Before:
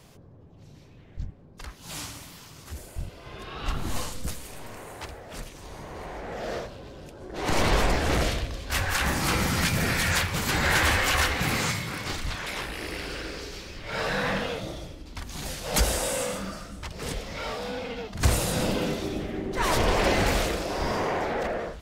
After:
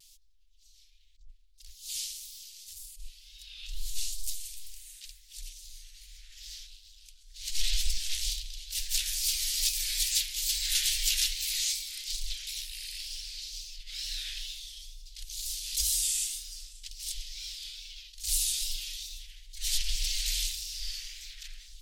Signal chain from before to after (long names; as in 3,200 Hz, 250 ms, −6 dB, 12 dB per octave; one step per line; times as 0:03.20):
inverse Chebyshev band-stop filter 120–910 Hz, stop band 70 dB
tape wow and flutter 110 cents
level that may rise only so fast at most 140 dB per second
level +3.5 dB